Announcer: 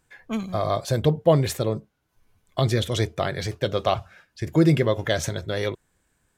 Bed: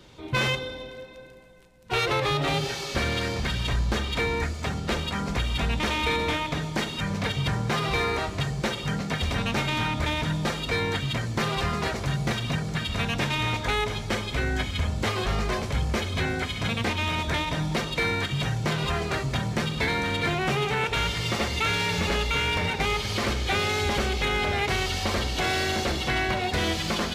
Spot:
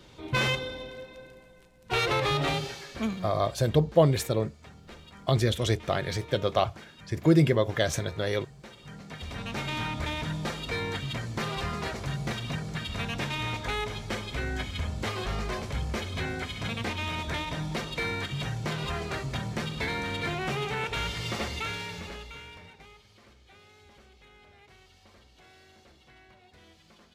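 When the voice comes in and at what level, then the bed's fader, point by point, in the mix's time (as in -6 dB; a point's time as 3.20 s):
2.70 s, -2.5 dB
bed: 2.47 s -1.5 dB
3.20 s -20.5 dB
8.65 s -20.5 dB
9.71 s -5.5 dB
21.47 s -5.5 dB
23.14 s -30.5 dB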